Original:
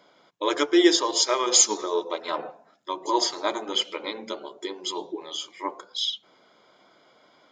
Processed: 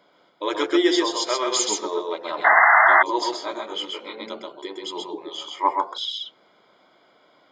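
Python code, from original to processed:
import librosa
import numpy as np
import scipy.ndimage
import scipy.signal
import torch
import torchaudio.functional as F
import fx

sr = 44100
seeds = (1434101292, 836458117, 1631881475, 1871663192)

y = fx.peak_eq(x, sr, hz=880.0, db=14.0, octaves=1.3, at=(5.38, 5.85))
y = y + 10.0 ** (-3.0 / 20.0) * np.pad(y, (int(130 * sr / 1000.0), 0))[:len(y)]
y = fx.spec_paint(y, sr, seeds[0], shape='noise', start_s=2.44, length_s=0.59, low_hz=620.0, high_hz=2100.0, level_db=-13.0)
y = fx.peak_eq(y, sr, hz=6100.0, db=-8.0, octaves=0.57)
y = fx.detune_double(y, sr, cents=18, at=(3.35, 4.19), fade=0.02)
y = y * 10.0 ** (-1.0 / 20.0)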